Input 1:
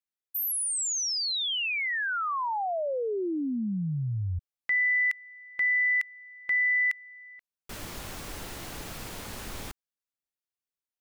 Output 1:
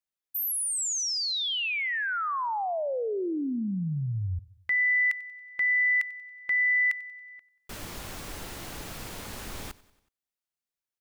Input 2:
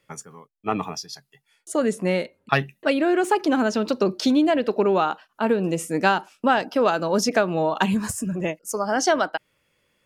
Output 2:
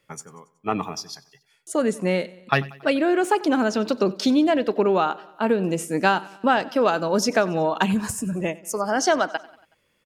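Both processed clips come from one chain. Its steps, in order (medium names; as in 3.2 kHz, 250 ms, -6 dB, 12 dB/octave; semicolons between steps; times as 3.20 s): feedback delay 93 ms, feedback 56%, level -21 dB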